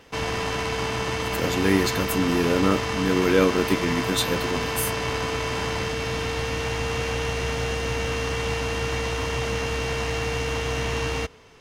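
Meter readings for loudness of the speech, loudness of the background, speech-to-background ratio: −24.5 LKFS, −26.5 LKFS, 2.0 dB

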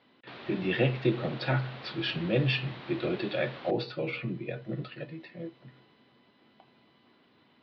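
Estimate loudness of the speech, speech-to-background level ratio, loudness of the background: −31.5 LKFS, 14.0 dB, −45.5 LKFS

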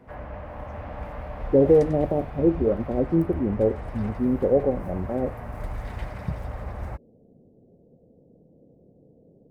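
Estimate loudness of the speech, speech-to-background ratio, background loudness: −23.5 LKFS, 13.5 dB, −37.0 LKFS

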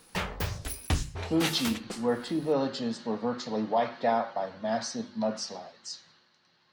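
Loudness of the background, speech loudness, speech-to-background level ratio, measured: −34.0 LKFS, −31.0 LKFS, 3.0 dB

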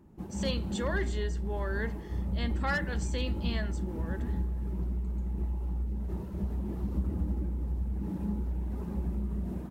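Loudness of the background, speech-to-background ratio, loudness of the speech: −35.0 LKFS, −2.0 dB, −37.0 LKFS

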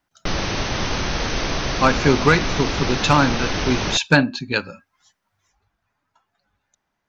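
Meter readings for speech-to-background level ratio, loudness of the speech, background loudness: 4.5 dB, −19.5 LKFS, −24.0 LKFS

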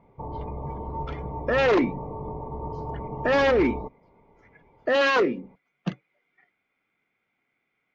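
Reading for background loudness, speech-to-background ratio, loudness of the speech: −35.0 LKFS, 11.0 dB, −24.0 LKFS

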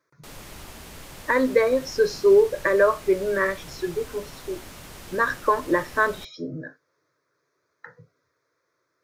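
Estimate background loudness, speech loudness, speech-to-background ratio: −42.0 LKFS, −22.5 LKFS, 19.5 dB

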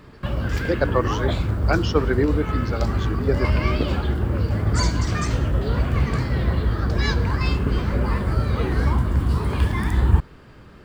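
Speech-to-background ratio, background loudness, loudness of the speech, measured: −2.5 dB, −23.0 LKFS, −25.5 LKFS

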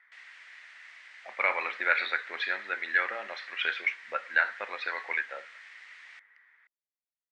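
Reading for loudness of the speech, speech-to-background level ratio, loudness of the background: −30.0 LKFS, 19.0 dB, −49.0 LKFS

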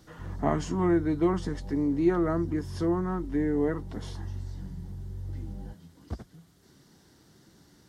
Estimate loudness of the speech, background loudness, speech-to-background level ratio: −28.0 LKFS, −40.5 LKFS, 12.5 dB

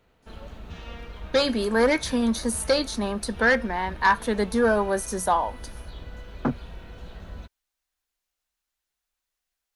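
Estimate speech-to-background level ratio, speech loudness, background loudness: 18.0 dB, −24.0 LKFS, −42.0 LKFS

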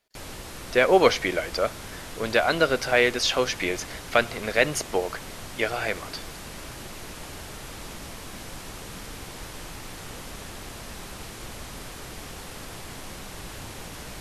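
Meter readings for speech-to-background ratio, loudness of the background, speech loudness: 15.0 dB, −39.0 LKFS, −24.0 LKFS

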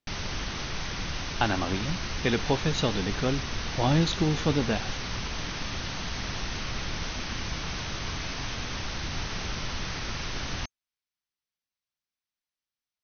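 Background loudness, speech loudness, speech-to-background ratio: −33.5 LKFS, −28.5 LKFS, 5.0 dB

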